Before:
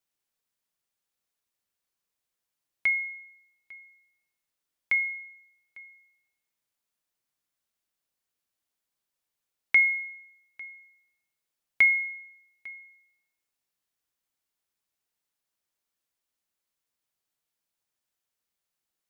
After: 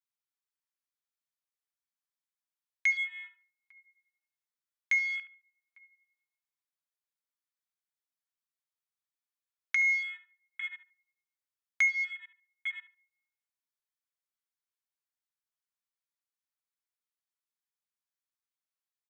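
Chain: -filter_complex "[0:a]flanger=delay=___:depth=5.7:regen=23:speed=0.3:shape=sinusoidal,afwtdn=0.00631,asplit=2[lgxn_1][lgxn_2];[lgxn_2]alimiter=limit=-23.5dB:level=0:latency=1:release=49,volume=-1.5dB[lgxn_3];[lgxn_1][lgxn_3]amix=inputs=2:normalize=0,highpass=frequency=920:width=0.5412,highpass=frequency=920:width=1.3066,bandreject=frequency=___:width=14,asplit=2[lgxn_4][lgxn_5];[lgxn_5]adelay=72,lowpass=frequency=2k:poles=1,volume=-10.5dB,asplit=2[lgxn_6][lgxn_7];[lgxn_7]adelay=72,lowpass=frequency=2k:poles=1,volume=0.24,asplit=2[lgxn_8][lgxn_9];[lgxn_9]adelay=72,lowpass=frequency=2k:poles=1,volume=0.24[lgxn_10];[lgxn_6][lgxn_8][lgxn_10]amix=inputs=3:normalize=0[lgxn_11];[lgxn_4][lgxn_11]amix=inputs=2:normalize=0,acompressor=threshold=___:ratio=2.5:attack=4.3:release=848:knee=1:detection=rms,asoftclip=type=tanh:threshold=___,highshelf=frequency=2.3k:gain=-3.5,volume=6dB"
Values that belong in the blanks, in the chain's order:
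6.9, 2.8k, -28dB, -23dB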